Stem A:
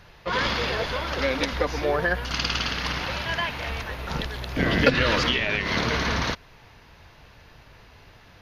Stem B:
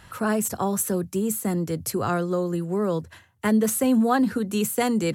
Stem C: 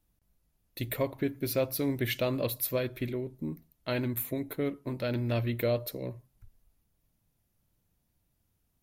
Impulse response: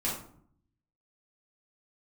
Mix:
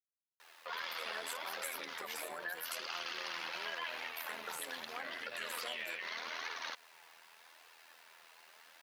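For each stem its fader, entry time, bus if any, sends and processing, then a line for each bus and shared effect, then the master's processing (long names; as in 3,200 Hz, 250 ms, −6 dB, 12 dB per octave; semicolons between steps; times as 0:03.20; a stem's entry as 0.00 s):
0.0 dB, 0.40 s, bus A, no send, downward compressor, threshold −26 dBFS, peak gain reduction 13 dB; flanger 0.82 Hz, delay 2.1 ms, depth 4.3 ms, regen −8%
−11.0 dB, 0.85 s, no bus, no send, downward compressor 2.5 to 1, threshold −29 dBFS, peak gain reduction 9 dB
−8.5 dB, 0.00 s, bus A, no send, no processing
bus A: 0.0 dB, bit-depth reduction 10 bits, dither none; brickwall limiter −28 dBFS, peak gain reduction 11 dB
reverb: not used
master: high-pass filter 770 Hz 12 dB per octave; amplitude modulation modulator 82 Hz, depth 45%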